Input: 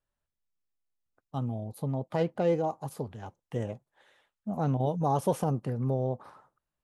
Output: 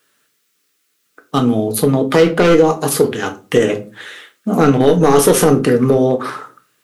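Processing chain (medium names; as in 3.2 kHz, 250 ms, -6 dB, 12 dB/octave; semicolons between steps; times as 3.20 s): high-pass 390 Hz 12 dB/octave; high-order bell 750 Hz -13 dB 1.1 oct; in parallel at +0.5 dB: compression 5:1, threshold -43 dBFS, peak gain reduction 13 dB; on the sum: overload inside the chain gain 28 dB; on a send at -5.5 dB: reverberation RT60 0.35 s, pre-delay 7 ms; on the sum: loudness maximiser +25 dB; trim -1 dB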